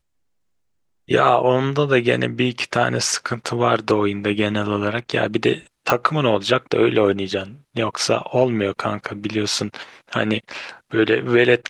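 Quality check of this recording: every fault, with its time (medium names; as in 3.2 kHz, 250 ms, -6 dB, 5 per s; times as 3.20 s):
5.90 s: pop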